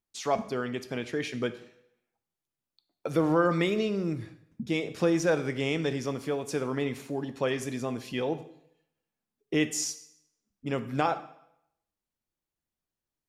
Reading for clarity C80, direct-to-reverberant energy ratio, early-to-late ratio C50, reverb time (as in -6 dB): 16.5 dB, 10.5 dB, 14.0 dB, 0.75 s